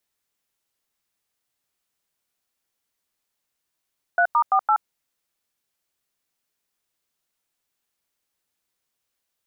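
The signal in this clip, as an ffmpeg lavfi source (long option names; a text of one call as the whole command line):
ffmpeg -f lavfi -i "aevalsrc='0.133*clip(min(mod(t,0.169),0.075-mod(t,0.169))/0.002,0,1)*(eq(floor(t/0.169),0)*(sin(2*PI*697*mod(t,0.169))+sin(2*PI*1477*mod(t,0.169)))+eq(floor(t/0.169),1)*(sin(2*PI*941*mod(t,0.169))+sin(2*PI*1209*mod(t,0.169)))+eq(floor(t/0.169),2)*(sin(2*PI*770*mod(t,0.169))+sin(2*PI*1209*mod(t,0.169)))+eq(floor(t/0.169),3)*(sin(2*PI*852*mod(t,0.169))+sin(2*PI*1336*mod(t,0.169))))':duration=0.676:sample_rate=44100" out.wav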